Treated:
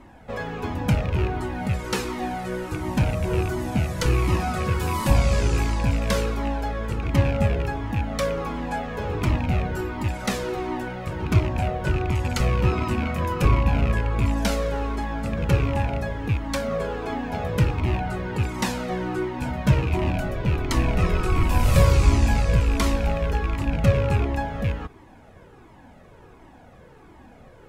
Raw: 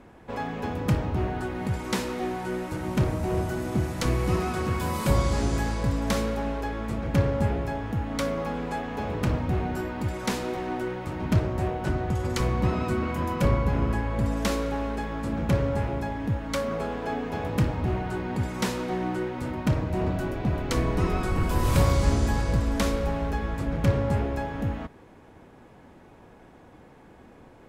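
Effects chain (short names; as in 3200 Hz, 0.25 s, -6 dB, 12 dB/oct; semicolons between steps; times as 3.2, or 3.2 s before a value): rattling part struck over -26 dBFS, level -26 dBFS; 19.38–19.97 doubler 15 ms -4 dB; cascading flanger falling 1.4 Hz; gain +7 dB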